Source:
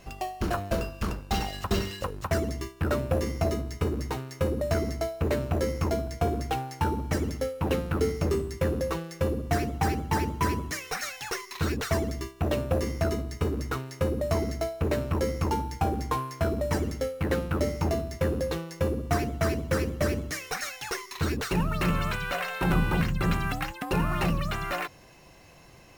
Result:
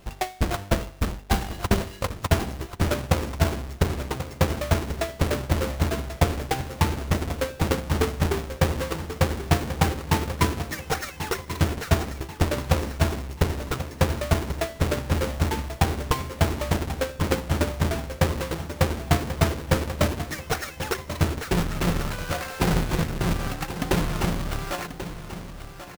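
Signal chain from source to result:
each half-wave held at its own peak
transient designer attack +8 dB, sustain −4 dB
repeating echo 1,087 ms, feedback 43%, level −11.5 dB
level −5 dB

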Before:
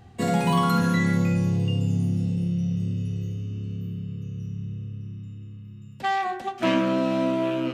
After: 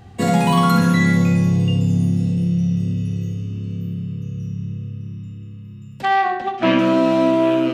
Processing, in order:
0:06.05–0:06.79: low-pass filter 3,900 Hz 12 dB per octave
on a send: flutter between parallel walls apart 11 metres, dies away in 0.4 s
on the sum: level +6 dB

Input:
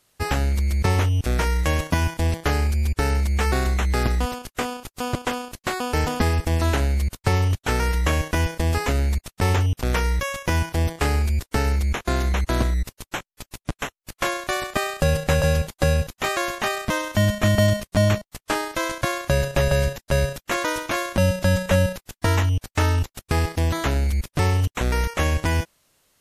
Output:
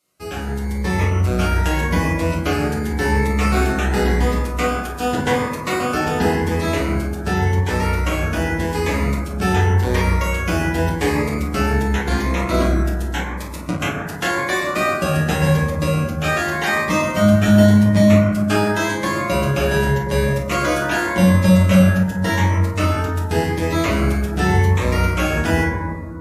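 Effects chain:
automatic gain control
convolution reverb RT60 2.1 s, pre-delay 8 ms, DRR −7.5 dB
dynamic equaliser 2,600 Hz, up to +4 dB, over −26 dBFS, Q 1.2
high-pass filter 140 Hz 12 dB per octave
phaser whose notches keep moving one way rising 0.88 Hz
level −8 dB

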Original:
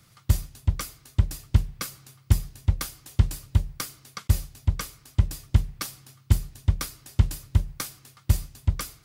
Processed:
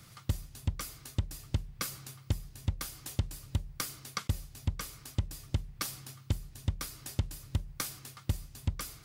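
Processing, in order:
downward compressor 6 to 1, threshold −32 dBFS, peak gain reduction 19 dB
level +3 dB

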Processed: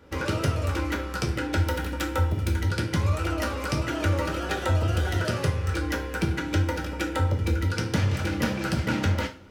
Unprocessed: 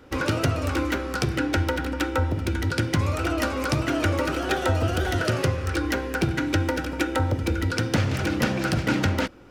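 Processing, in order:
0:01.58–0:02.61: high-shelf EQ 8,000 Hz +8.5 dB
coupled-rooms reverb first 0.32 s, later 1.8 s, from −27 dB, DRR 2.5 dB
level −5 dB

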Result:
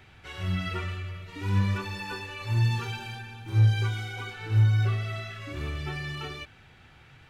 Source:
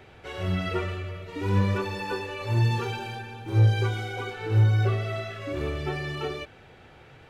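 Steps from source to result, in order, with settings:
parametric band 490 Hz −12.5 dB 1.5 octaves

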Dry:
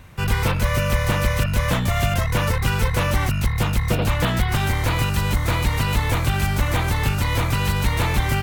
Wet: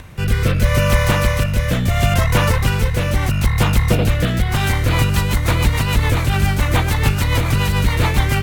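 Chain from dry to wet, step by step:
upward compression, threshold −35 dBFS
rotating-speaker cabinet horn 0.75 Hz, later 7 Hz, at 0:04.41
on a send: feedback echo with a high-pass in the loop 191 ms, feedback 59%, level −19 dB
on the sum: level +6 dB

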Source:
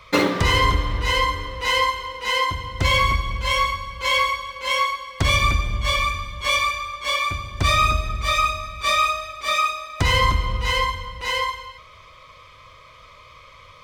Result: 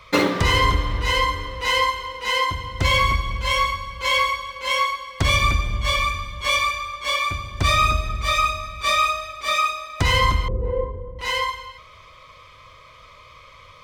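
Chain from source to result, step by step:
0:10.48–0:11.19: low-pass with resonance 430 Hz, resonance Q 4.9

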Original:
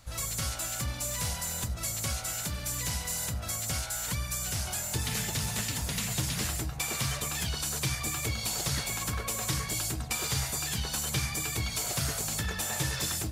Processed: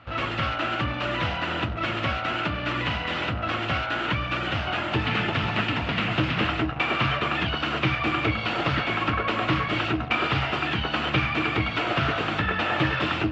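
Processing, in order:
in parallel at −11 dB: bit reduction 6 bits
on the sum: bad sample-rate conversion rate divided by 3×, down none, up hold
loudspeaker in its box 100–2,900 Hz, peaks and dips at 150 Hz −3 dB, 310 Hz +8 dB, 680 Hz +4 dB, 1,300 Hz +8 dB, 2,800 Hz +7 dB
highs frequency-modulated by the lows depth 0.11 ms
level +6.5 dB

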